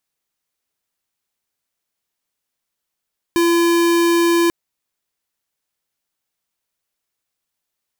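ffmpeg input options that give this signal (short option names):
-f lavfi -i "aevalsrc='0.188*(2*lt(mod(340*t,1),0.5)-1)':d=1.14:s=44100"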